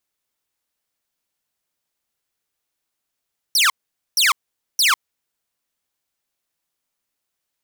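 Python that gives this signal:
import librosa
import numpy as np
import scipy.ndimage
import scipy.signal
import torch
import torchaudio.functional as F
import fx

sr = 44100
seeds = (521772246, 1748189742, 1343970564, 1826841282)

y = fx.laser_zaps(sr, level_db=-10.0, start_hz=6000.0, end_hz=990.0, length_s=0.15, wave='saw', shots=3, gap_s=0.47)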